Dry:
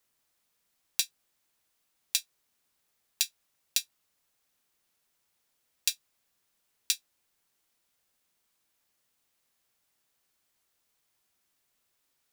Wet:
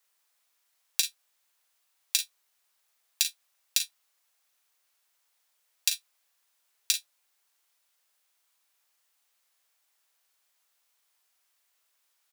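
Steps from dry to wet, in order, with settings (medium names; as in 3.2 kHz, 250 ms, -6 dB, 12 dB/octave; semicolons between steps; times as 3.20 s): high-pass 650 Hz 12 dB/octave; on a send: early reflections 39 ms -9.5 dB, 51 ms -12 dB; on the sum: trim +2 dB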